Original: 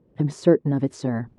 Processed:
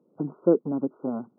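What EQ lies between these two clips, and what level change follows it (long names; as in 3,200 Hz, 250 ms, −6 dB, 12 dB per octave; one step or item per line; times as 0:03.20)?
high-pass filter 200 Hz 24 dB per octave
linear-phase brick-wall low-pass 1,500 Hz
−3.0 dB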